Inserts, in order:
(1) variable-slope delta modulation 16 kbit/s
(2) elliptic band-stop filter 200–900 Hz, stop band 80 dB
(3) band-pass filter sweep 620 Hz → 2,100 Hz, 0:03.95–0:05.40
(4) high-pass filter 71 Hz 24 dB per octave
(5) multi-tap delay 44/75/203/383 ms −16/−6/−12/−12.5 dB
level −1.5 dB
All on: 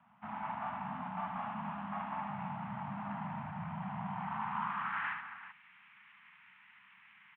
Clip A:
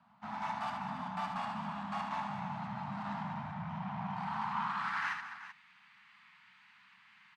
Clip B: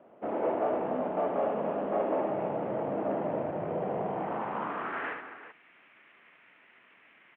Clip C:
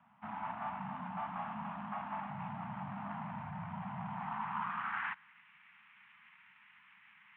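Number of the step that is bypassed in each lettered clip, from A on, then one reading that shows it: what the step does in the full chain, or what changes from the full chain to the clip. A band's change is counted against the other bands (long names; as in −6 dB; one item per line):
1, change in momentary loudness spread −16 LU
2, 500 Hz band +21.5 dB
5, echo-to-direct ratio −4.0 dB to none audible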